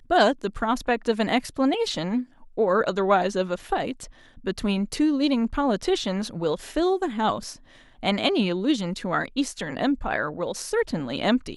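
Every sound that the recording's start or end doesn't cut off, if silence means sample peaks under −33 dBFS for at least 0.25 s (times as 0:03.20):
0:02.58–0:04.05
0:04.46–0:07.53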